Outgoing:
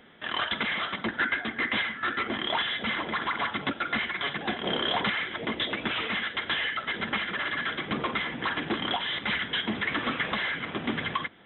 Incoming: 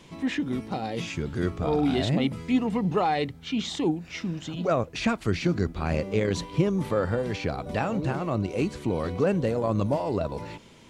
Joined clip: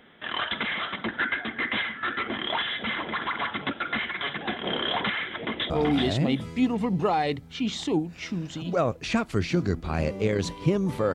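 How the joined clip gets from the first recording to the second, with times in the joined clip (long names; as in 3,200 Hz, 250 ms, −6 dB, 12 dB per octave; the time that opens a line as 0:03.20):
outgoing
0:05.37–0:05.70: delay throw 380 ms, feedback 15%, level −2.5 dB
0:05.70: continue with incoming from 0:01.62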